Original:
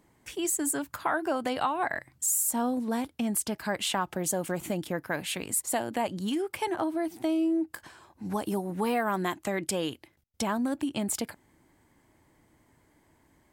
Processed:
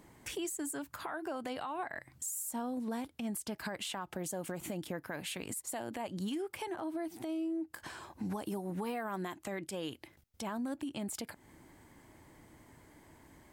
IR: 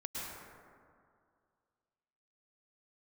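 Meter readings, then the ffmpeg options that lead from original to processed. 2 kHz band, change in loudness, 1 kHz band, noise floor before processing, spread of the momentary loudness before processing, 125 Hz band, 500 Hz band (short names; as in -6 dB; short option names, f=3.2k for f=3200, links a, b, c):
-9.5 dB, -9.5 dB, -10.5 dB, -66 dBFS, 6 LU, -6.5 dB, -9.0 dB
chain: -af "acompressor=threshold=-41dB:ratio=6,alimiter=level_in=11dB:limit=-24dB:level=0:latency=1:release=58,volume=-11dB,volume=5.5dB"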